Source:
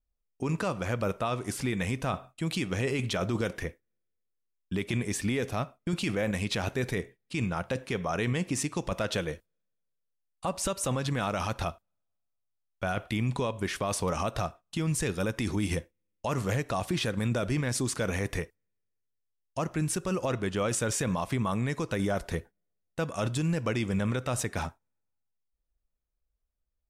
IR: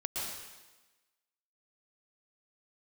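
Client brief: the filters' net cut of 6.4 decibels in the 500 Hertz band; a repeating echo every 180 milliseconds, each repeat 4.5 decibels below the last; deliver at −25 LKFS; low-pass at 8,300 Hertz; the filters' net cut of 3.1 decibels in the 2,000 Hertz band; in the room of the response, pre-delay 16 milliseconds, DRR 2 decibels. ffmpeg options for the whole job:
-filter_complex "[0:a]lowpass=8300,equalizer=frequency=500:width_type=o:gain=-8,equalizer=frequency=2000:width_type=o:gain=-3.5,aecho=1:1:180|360|540|720|900|1080|1260|1440|1620:0.596|0.357|0.214|0.129|0.0772|0.0463|0.0278|0.0167|0.01,asplit=2[link_01][link_02];[1:a]atrim=start_sample=2205,adelay=16[link_03];[link_02][link_03]afir=irnorm=-1:irlink=0,volume=-5.5dB[link_04];[link_01][link_04]amix=inputs=2:normalize=0,volume=4.5dB"

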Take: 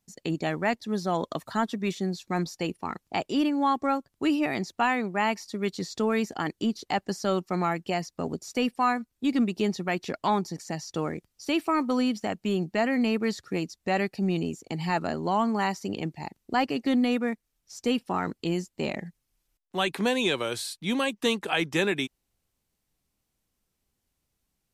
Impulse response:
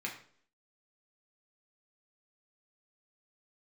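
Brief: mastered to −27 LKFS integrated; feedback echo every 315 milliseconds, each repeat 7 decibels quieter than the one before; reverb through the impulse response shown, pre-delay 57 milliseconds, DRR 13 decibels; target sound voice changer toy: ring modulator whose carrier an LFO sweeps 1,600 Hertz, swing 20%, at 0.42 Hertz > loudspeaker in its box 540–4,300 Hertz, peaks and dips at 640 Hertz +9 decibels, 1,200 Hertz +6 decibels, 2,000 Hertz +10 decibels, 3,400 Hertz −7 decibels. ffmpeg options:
-filter_complex "[0:a]aecho=1:1:315|630|945|1260|1575:0.447|0.201|0.0905|0.0407|0.0183,asplit=2[link_01][link_02];[1:a]atrim=start_sample=2205,adelay=57[link_03];[link_02][link_03]afir=irnorm=-1:irlink=0,volume=-15.5dB[link_04];[link_01][link_04]amix=inputs=2:normalize=0,aeval=exprs='val(0)*sin(2*PI*1600*n/s+1600*0.2/0.42*sin(2*PI*0.42*n/s))':channel_layout=same,highpass=540,equalizer=frequency=640:width_type=q:width=4:gain=9,equalizer=frequency=1200:width_type=q:width=4:gain=6,equalizer=frequency=2000:width_type=q:width=4:gain=10,equalizer=frequency=3400:width_type=q:width=4:gain=-7,lowpass=frequency=4300:width=0.5412,lowpass=frequency=4300:width=1.3066,volume=-3.5dB"

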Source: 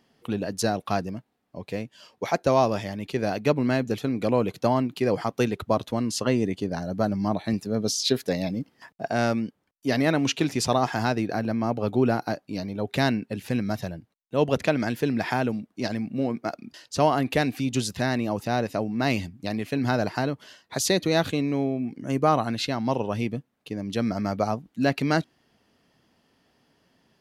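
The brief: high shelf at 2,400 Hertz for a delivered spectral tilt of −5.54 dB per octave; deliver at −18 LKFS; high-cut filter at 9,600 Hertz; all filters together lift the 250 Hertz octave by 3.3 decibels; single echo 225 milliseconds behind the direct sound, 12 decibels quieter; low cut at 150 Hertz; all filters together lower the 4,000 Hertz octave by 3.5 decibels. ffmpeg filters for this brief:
ffmpeg -i in.wav -af "highpass=150,lowpass=9600,equalizer=frequency=250:width_type=o:gain=4.5,highshelf=frequency=2400:gain=4,equalizer=frequency=4000:width_type=o:gain=-8,aecho=1:1:225:0.251,volume=6.5dB" out.wav

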